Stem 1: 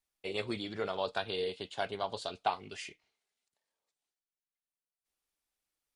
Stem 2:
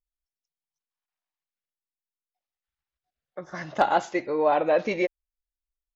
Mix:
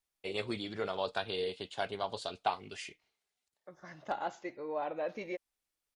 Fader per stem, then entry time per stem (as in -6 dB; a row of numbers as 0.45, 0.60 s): -0.5, -14.5 dB; 0.00, 0.30 s